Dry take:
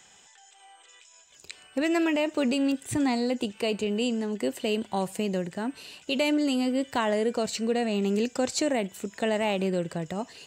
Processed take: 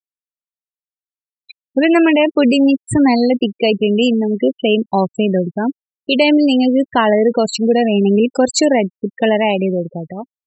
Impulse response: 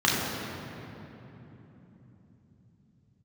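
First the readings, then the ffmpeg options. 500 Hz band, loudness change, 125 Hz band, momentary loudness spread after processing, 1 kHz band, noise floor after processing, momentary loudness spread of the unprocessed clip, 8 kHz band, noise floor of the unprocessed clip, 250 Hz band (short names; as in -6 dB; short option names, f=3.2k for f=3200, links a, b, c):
+13.0 dB, +13.0 dB, +12.0 dB, 9 LU, +12.5 dB, under -85 dBFS, 8 LU, +9.0 dB, -56 dBFS, +13.5 dB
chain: -af "afftfilt=real='re*gte(hypot(re,im),0.0447)':imag='im*gte(hypot(re,im),0.0447)':win_size=1024:overlap=0.75,dynaudnorm=f=260:g=9:m=11.5dB,volume=2.5dB"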